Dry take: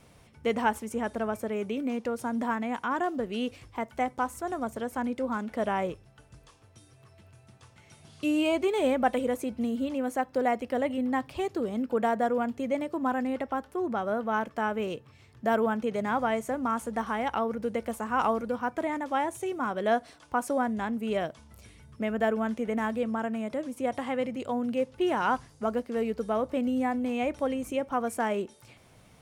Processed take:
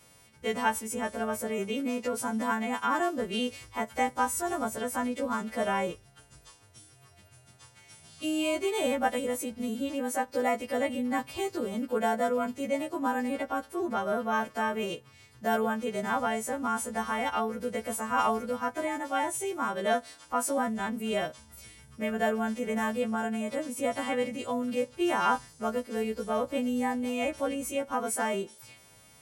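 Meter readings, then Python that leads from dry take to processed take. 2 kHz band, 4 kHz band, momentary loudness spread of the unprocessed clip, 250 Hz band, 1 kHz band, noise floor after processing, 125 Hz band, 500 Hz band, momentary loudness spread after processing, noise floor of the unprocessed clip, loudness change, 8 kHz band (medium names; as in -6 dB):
+1.0 dB, +4.0 dB, 6 LU, -2.0 dB, -0.5 dB, -58 dBFS, -1.5 dB, -1.5 dB, 5 LU, -58 dBFS, -0.5 dB, +9.5 dB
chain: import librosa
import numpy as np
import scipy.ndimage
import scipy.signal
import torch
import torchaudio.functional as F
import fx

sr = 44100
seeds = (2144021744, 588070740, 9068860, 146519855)

y = fx.freq_snap(x, sr, grid_st=2)
y = fx.rider(y, sr, range_db=10, speed_s=2.0)
y = F.gain(torch.from_numpy(y), -1.0).numpy()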